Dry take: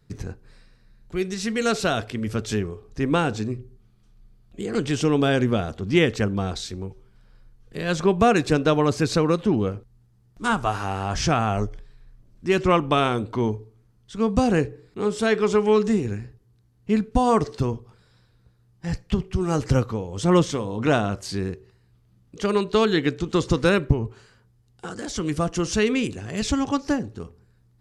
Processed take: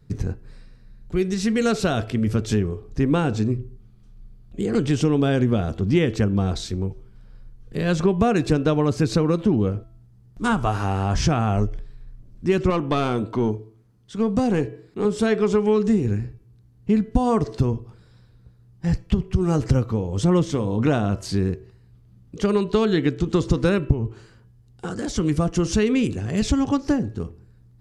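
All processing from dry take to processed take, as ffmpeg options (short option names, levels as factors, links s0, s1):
-filter_complex "[0:a]asettb=1/sr,asplit=3[s0][s1][s2];[s0]atrim=end=12.704[s3];[s1]atrim=start=12.7:end=15.05,asetpts=PTS-STARTPTS,afade=t=in:d=0.004:c=qsin,afade=t=out:st=2.346:d=0.004:c=qsin,highpass=f=190:p=1,aeval=exprs='(tanh(5.01*val(0)+0.2)-tanh(0.2))/5.01':c=same[s4];[s2]atrim=start=15.046[s5];[s3][s4]acrossfade=d=0.004:c1=hsin:c2=qsin[s6];[s6][s5]acrossfade=d=0.004:c1=qsin:c2=hsin,lowshelf=f=450:g=8.5,bandreject=f=331.6:t=h:w=4,bandreject=f=663.2:t=h:w=4,bandreject=f=994.8:t=h:w=4,bandreject=f=1326.4:t=h:w=4,bandreject=f=1658:t=h:w=4,bandreject=f=1989.6:t=h:w=4,bandreject=f=2321.2:t=h:w=4,bandreject=f=2652.8:t=h:w=4,bandreject=f=2984.4:t=h:w=4,bandreject=f=3316:t=h:w=4,acompressor=threshold=0.141:ratio=2.5"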